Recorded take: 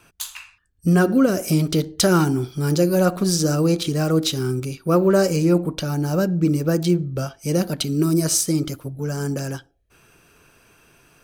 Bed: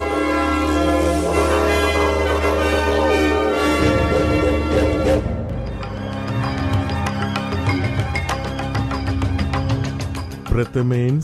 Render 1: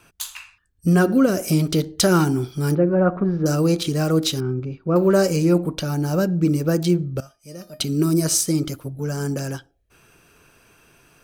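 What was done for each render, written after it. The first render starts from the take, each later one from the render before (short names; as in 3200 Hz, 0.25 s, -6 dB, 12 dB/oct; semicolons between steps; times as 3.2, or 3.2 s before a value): 2.75–3.46 LPF 1800 Hz 24 dB/oct; 4.4–4.96 tape spacing loss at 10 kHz 41 dB; 7.2–7.8 resonator 610 Hz, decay 0.21 s, mix 90%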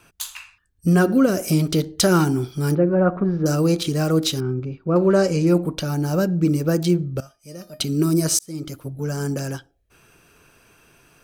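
4.7–5.47 air absorption 58 m; 8.39–8.91 fade in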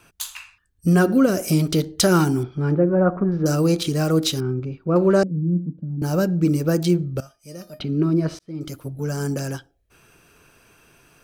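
2.43–3.32 LPF 2000 Hz; 5.23–6.02 Butterworth band-pass 190 Hz, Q 1.8; 7.79–8.61 air absorption 360 m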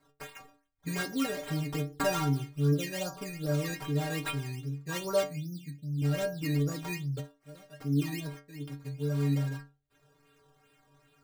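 decimation with a swept rate 14×, swing 100% 2.5 Hz; metallic resonator 140 Hz, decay 0.35 s, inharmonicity 0.008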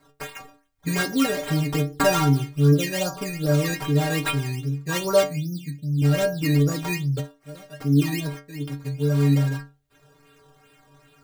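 gain +9.5 dB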